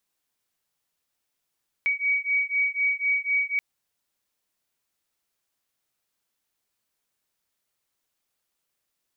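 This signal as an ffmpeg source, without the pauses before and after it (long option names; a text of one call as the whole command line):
ffmpeg -f lavfi -i "aevalsrc='0.0562*(sin(2*PI*2260*t)+sin(2*PI*2264*t))':duration=1.73:sample_rate=44100" out.wav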